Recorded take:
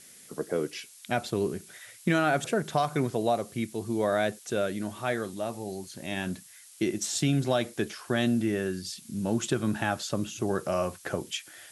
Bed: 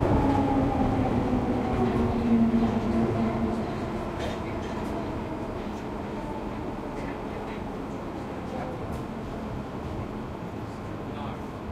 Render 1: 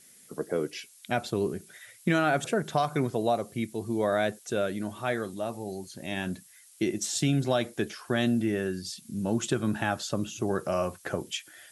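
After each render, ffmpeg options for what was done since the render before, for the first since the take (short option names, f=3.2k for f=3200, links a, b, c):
-af "afftdn=nr=6:nf=-52"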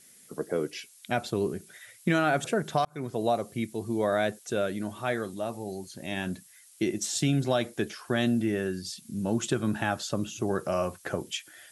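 -filter_complex "[0:a]asplit=2[a][b];[a]atrim=end=2.85,asetpts=PTS-STARTPTS,afade=t=out:st=2.846:d=0.004:c=hsin[c];[b]atrim=start=2.85,asetpts=PTS-STARTPTS,afade=t=in:d=0.4[d];[c][d]concat=n=2:v=0:a=1"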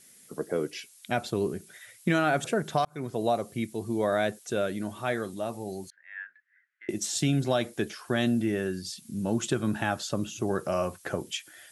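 -filter_complex "[0:a]asettb=1/sr,asplit=3[a][b][c];[a]atrim=end=5.904[d];[b]atrim=start=5.9:end=6.89,asetpts=PTS-STARTPTS,afade=t=in:d=0.004:c=qsin,afade=t=out:st=0.986:d=0.004:c=qsin,asuperpass=centerf=1700:order=4:qfactor=3.5[e];[c]atrim=start=6.886[f];[d][e]acrossfade=d=0.004:c1=hsin:c2=qsin[g];[g][f]acrossfade=d=0.004:c1=qsin:c2=hsin"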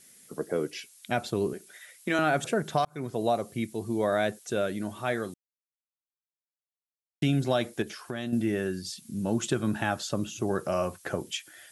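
-filter_complex "[0:a]asettb=1/sr,asplit=3[a][b][c];[a]atrim=end=1.534[d];[b]atrim=start=1.53:end=2.19,asetpts=PTS-STARTPTS,afade=t=in:d=0.004:c=qsin,afade=t=out:st=0.656:d=0.004:c=qsin,highpass=310[e];[c]atrim=start=2.186[f];[d][e]acrossfade=d=0.004:c1=hsin:c2=qsin[g];[g][f]acrossfade=d=0.004:c1=qsin:c2=hsin,asettb=1/sr,asplit=3[h][i][j];[h]atrim=end=7.824[k];[i]atrim=start=7.82:end=8.33,asetpts=PTS-STARTPTS,afade=t=in:d=0.004:c=qsin,afade=t=out:st=0.506:d=0.004:c=qsin,acompressor=threshold=-33dB:ratio=2.5:attack=3.2:release=140:knee=1:detection=peak[l];[j]atrim=start=8.326[m];[k][l]acrossfade=d=0.004:c1=hsin:c2=qsin[n];[n][m]acrossfade=d=0.004:c1=qsin:c2=hsin,asplit=3[o][p][q];[o]atrim=end=5.34,asetpts=PTS-STARTPTS,afade=t=out:st=5.336:d=0.004:c=hsin[r];[p]atrim=start=5.34:end=7.22,asetpts=PTS-STARTPTS,volume=0[s];[q]atrim=start=7.22,asetpts=PTS-STARTPTS,afade=t=in:d=0.004:c=hsin[t];[r][s][t]concat=n=3:v=0:a=1"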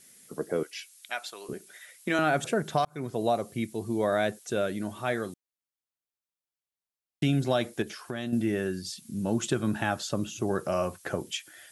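-filter_complex "[0:a]asettb=1/sr,asplit=3[a][b][c];[a]atrim=end=0.634[d];[b]atrim=start=0.63:end=1.49,asetpts=PTS-STARTPTS,afade=t=in:d=0.004:c=qsin,afade=t=out:st=0.856:d=0.004:c=qsin,highpass=1.1k[e];[c]atrim=start=1.486[f];[d][e]acrossfade=d=0.004:c1=hsin:c2=qsin[g];[g][f]acrossfade=d=0.004:c1=qsin:c2=hsin"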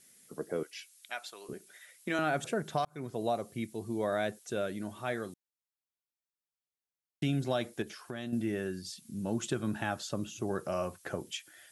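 -af "volume=-5.5dB"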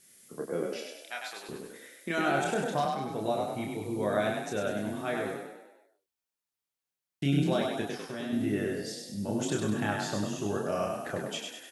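-filter_complex "[0:a]asplit=2[a][b];[b]adelay=29,volume=-3.5dB[c];[a][c]amix=inputs=2:normalize=0,asplit=2[d][e];[e]asplit=7[f][g][h][i][j][k][l];[f]adelay=99,afreqshift=30,volume=-3.5dB[m];[g]adelay=198,afreqshift=60,volume=-9.2dB[n];[h]adelay=297,afreqshift=90,volume=-14.9dB[o];[i]adelay=396,afreqshift=120,volume=-20.5dB[p];[j]adelay=495,afreqshift=150,volume=-26.2dB[q];[k]adelay=594,afreqshift=180,volume=-31.9dB[r];[l]adelay=693,afreqshift=210,volume=-37.6dB[s];[m][n][o][p][q][r][s]amix=inputs=7:normalize=0[t];[d][t]amix=inputs=2:normalize=0"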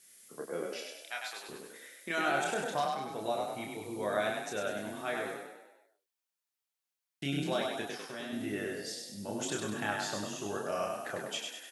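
-af "lowshelf=f=380:g=-11.5"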